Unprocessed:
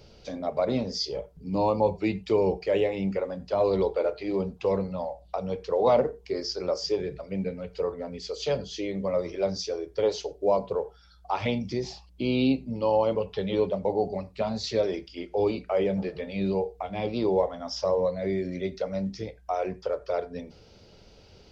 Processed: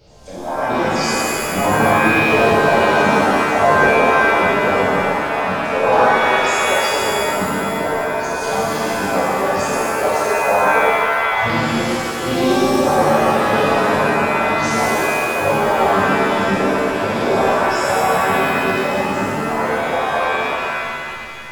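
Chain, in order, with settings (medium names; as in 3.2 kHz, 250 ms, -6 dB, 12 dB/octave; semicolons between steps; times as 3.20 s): pitch shift switched off and on +5.5 st, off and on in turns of 68 ms; pitch-shifted reverb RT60 2.4 s, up +7 st, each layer -2 dB, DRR -9.5 dB; trim -1.5 dB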